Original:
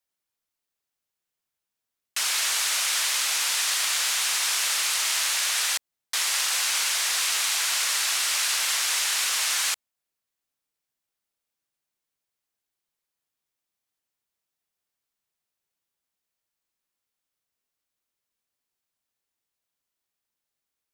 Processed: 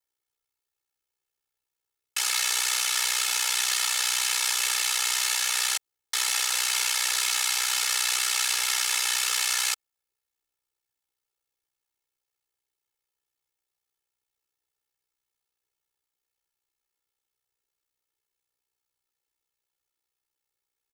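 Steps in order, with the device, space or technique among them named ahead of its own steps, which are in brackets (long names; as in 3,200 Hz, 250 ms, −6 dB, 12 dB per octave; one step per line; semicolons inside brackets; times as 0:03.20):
ring-modulated robot voice (ring modulation 31 Hz; comb filter 2.3 ms, depth 78%)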